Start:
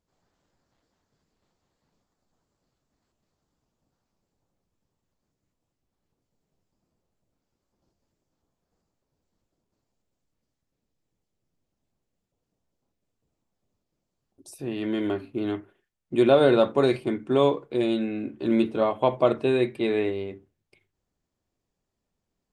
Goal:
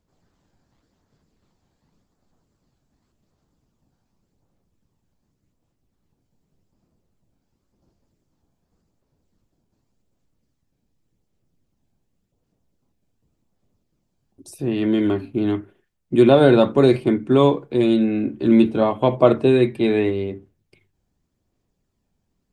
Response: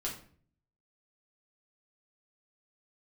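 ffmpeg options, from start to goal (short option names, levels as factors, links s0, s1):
-filter_complex "[0:a]acrossover=split=320[s0][s1];[s0]acontrast=77[s2];[s1]aphaser=in_gain=1:out_gain=1:delay=1.3:decay=0.26:speed=0.88:type=sinusoidal[s3];[s2][s3]amix=inputs=2:normalize=0,volume=1.5"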